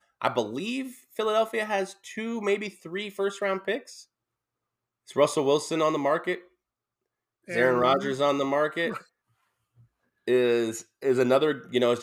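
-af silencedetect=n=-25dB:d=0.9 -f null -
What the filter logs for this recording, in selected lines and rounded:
silence_start: 3.77
silence_end: 5.16 | silence_duration: 1.39
silence_start: 6.35
silence_end: 7.50 | silence_duration: 1.16
silence_start: 8.97
silence_end: 10.28 | silence_duration: 1.31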